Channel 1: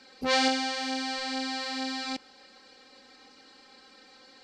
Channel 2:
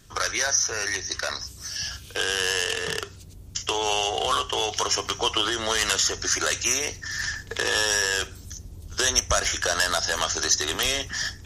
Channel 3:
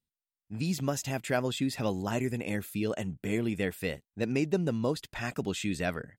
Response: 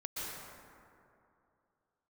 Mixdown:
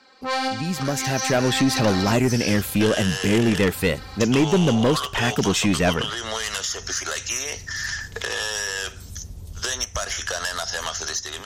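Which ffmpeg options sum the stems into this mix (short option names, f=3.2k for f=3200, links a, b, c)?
-filter_complex "[0:a]equalizer=f=1.1k:w=1.5:g=8.5,volume=-1.5dB[a];[1:a]equalizer=f=320:w=3.9:g=-7.5,acompressor=threshold=-29dB:ratio=3,adelay=650,volume=-9dB[b];[2:a]asoftclip=type=hard:threshold=-22dB,volume=1.5dB,asplit=2[c][d];[d]apad=whole_len=195752[e];[a][e]sidechaincompress=threshold=-38dB:ratio=4:attack=34:release=114[f];[f][b][c]amix=inputs=3:normalize=0,dynaudnorm=f=140:g=13:m=13dB,aeval=exprs='(tanh(3.98*val(0)+0.15)-tanh(0.15))/3.98':c=same"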